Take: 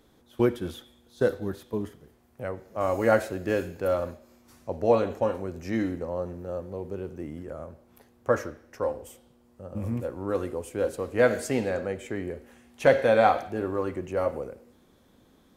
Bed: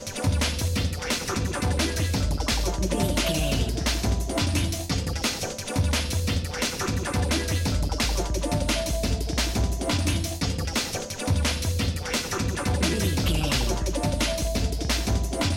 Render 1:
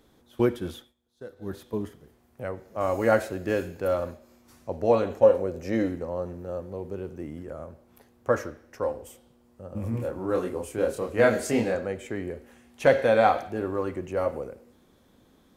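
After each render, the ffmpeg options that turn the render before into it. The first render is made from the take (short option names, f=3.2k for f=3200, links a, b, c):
-filter_complex "[0:a]asettb=1/sr,asplit=3[a][b][c];[a]atrim=end=5.234[d];[b]atrim=start=5.23:end=5.88,asetpts=PTS-STARTPTS,afade=t=in:d=0.004:c=qsin,afade=t=out:st=0.646:d=0.004:c=qsin,equalizer=f=520:t=o:w=0.55:g=11.5[e];[c]atrim=start=5.876[f];[d][e]acrossfade=d=0.004:c1=hsin:c2=qsin[g];[g][f]acrossfade=d=0.004:c1=qsin:c2=hsin,asettb=1/sr,asplit=3[h][i][j];[h]atrim=end=9.914[k];[i]atrim=start=9.91:end=11.75,asetpts=PTS-STARTPTS,afade=t=in:d=0.004:c=qsin,afade=t=out:st=1.836:d=0.004:c=qsin,asplit=2[l][m];[m]adelay=27,volume=-2dB[n];[l][n]amix=inputs=2:normalize=0,atrim=end_sample=81144[o];[j]atrim=start=11.746[p];[k][o]acrossfade=d=0.004:c1=hsin:c2=qsin[q];[q][p]acrossfade=d=0.004:c1=qsin:c2=hsin,asplit=3[r][s][t];[r]atrim=end=0.94,asetpts=PTS-STARTPTS,afade=t=out:st=0.76:d=0.18:silence=0.125893[u];[s]atrim=start=0.94:end=1.36,asetpts=PTS-STARTPTS,volume=-18dB[v];[t]atrim=start=1.36,asetpts=PTS-STARTPTS,afade=t=in:d=0.18:silence=0.125893[w];[u][v][w]concat=n=3:v=0:a=1"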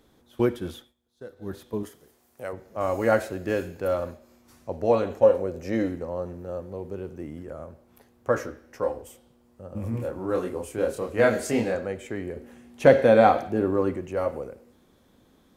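-filter_complex "[0:a]asettb=1/sr,asplit=3[a][b][c];[a]atrim=end=1.834[d];[b]atrim=start=1.83:end=2.53,asetpts=PTS-STARTPTS,afade=t=in:d=0.004:c=qsin,afade=t=out:st=0.696:d=0.004:c=qsin,bass=f=250:g=-10,treble=f=4k:g=9[e];[c]atrim=start=2.526[f];[d][e]acrossfade=d=0.004:c1=hsin:c2=qsin[g];[g][f]acrossfade=d=0.004:c1=qsin:c2=hsin,asettb=1/sr,asplit=3[h][i][j];[h]atrim=end=8.344[k];[i]atrim=start=8.34:end=9.02,asetpts=PTS-STARTPTS,afade=t=in:d=0.004:c=qsin,afade=t=out:st=0.676:d=0.004:c=qsin,asplit=2[l][m];[m]adelay=16,volume=-5.5dB[n];[l][n]amix=inputs=2:normalize=0,atrim=end_sample=29988[o];[j]atrim=start=9.016[p];[k][o]acrossfade=d=0.004:c1=hsin:c2=qsin[q];[q][p]acrossfade=d=0.004:c1=qsin:c2=hsin,asettb=1/sr,asplit=3[r][s][t];[r]atrim=end=12.364[u];[s]atrim=start=12.36:end=13.97,asetpts=PTS-STARTPTS,afade=t=in:d=0.004:c=qsin,afade=t=out:st=1.606:d=0.004:c=qsin,equalizer=f=220:w=0.47:g=7.5[v];[t]atrim=start=13.966[w];[u][v]acrossfade=d=0.004:c1=hsin:c2=qsin[x];[x][w]acrossfade=d=0.004:c1=qsin:c2=hsin"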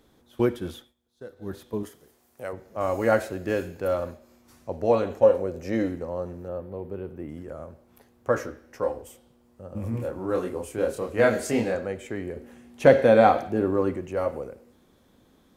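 -filter_complex "[0:a]asettb=1/sr,asplit=3[a][b][c];[a]atrim=end=6.484[d];[b]atrim=start=6.48:end=7.29,asetpts=PTS-STARTPTS,afade=t=in:d=0.004:c=qsin,afade=t=out:st=0.806:d=0.004:c=qsin,equalizer=f=6.5k:w=1.2:g=-15[e];[c]atrim=start=7.286[f];[d][e]acrossfade=d=0.004:c1=hsin:c2=qsin[g];[g][f]acrossfade=d=0.004:c1=qsin:c2=hsin"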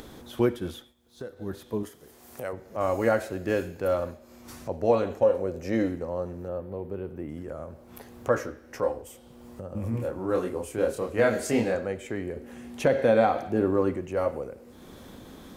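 -af "alimiter=limit=-11dB:level=0:latency=1:release=237,acompressor=mode=upward:threshold=-32dB:ratio=2.5"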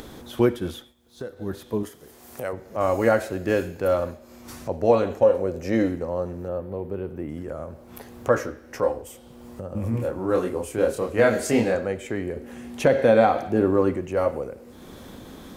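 -af "volume=4dB"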